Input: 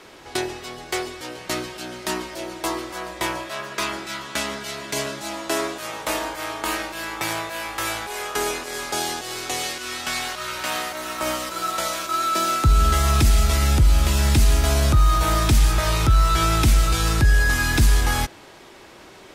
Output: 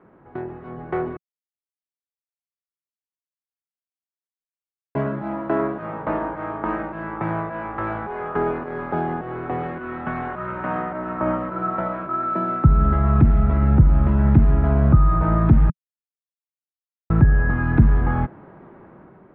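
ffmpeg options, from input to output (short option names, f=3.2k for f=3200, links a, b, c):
-filter_complex "[0:a]asettb=1/sr,asplit=3[a][b][c];[a]atrim=end=9.014[d];[b]atrim=start=9.01:end=12.3,asetpts=PTS-STARTPTS,afade=t=in:d=0.004:c=qsin,afade=t=out:st=3.286:d=0.004:c=qsin,lowpass=3.4k[e];[c]atrim=start=12.296[f];[d][e]acrossfade=d=0.004:c1=hsin:c2=qsin[g];[g][f]acrossfade=d=0.004:c1=qsin:c2=hsin,asplit=5[h][i][j][k][l];[h]atrim=end=1.17,asetpts=PTS-STARTPTS,afade=t=out:st=1.166:d=0.004:c=hsin[m];[i]atrim=start=1.17:end=4.95,asetpts=PTS-STARTPTS,volume=0[n];[j]atrim=start=4.95:end=15.7,asetpts=PTS-STARTPTS,afade=t=in:d=0.004:c=hsin,afade=t=out:st=10.746:d=0.004:c=hsin[o];[k]atrim=start=15.7:end=17.1,asetpts=PTS-STARTPTS,volume=0[p];[l]atrim=start=17.1,asetpts=PTS-STARTPTS,afade=t=in:d=0.004:c=hsin[q];[m][n][o][p][q]concat=n=5:v=0:a=1,lowpass=f=1.5k:w=0.5412,lowpass=f=1.5k:w=1.3066,dynaudnorm=f=210:g=7:m=11.5dB,equalizer=f=170:w=1.2:g=13,volume=-8.5dB"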